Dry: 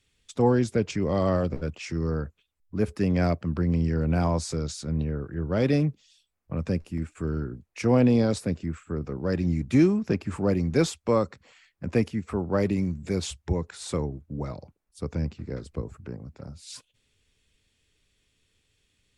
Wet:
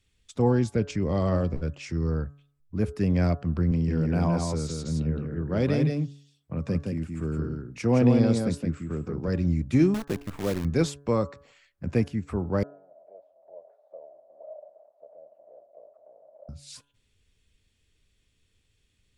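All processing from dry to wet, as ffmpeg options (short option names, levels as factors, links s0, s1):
-filter_complex "[0:a]asettb=1/sr,asplit=3[s0][s1][s2];[s0]atrim=end=3.714[s3];[s1]atrim=start=3.71:end=9.28,asetpts=PTS-STARTPTS,afade=t=in:d=0.004:c=qsin,afade=t=out:st=5.566:d=0.004:c=qsin,highpass=100,aecho=1:1:168:0.631,atrim=end_sample=245637[s4];[s2]atrim=start=9.276[s5];[s3][s4]acrossfade=d=0.004:c1=hsin:c2=qsin[s6];[s6][s5]acrossfade=d=0.004:c1=qsin:c2=hsin,asettb=1/sr,asplit=3[s7][s8][s9];[s7]atrim=end=9.944[s10];[s8]atrim=start=9.94:end=10.65,asetpts=PTS-STARTPTS,afade=t=in:d=0.004:c=qsin,afade=t=out:st=0.706:d=0.004:c=qsin,bass=f=250:g=-8,treble=f=4000:g=-12,acrusher=bits=6:dc=4:mix=0:aa=0.000001[s11];[s9]atrim=start=10.646[s12];[s10][s11]acrossfade=d=0.004:c1=hsin:c2=qsin[s13];[s13][s12]acrossfade=d=0.004:c1=qsin:c2=hsin,asettb=1/sr,asplit=3[s14][s15][s16];[s14]atrim=end=12.634[s17];[s15]atrim=start=12.63:end=16.49,asetpts=PTS-STARTPTS,afade=t=in:d=0.004:c=qsin,afade=t=out:st=3.856:d=0.004:c=qsin,aeval=exprs='val(0)+0.5*0.0376*sgn(val(0))':c=same,asuperpass=centerf=620:order=4:qfactor=6[s18];[s16]atrim=start=16.486[s19];[s17][s18]acrossfade=d=0.004:c1=hsin:c2=qsin[s20];[s20][s19]acrossfade=d=0.004:c1=qsin:c2=hsin,lowshelf=f=160:g=7.5,bandreject=f=142.1:t=h:w=4,bandreject=f=284.2:t=h:w=4,bandreject=f=426.3:t=h:w=4,bandreject=f=568.4:t=h:w=4,bandreject=f=710.5:t=h:w=4,bandreject=f=852.6:t=h:w=4,bandreject=f=994.7:t=h:w=4,bandreject=f=1136.8:t=h:w=4,bandreject=f=1278.9:t=h:w=4,bandreject=f=1421:t=h:w=4,bandreject=f=1563.1:t=h:w=4,bandreject=f=1705.2:t=h:w=4,volume=0.708"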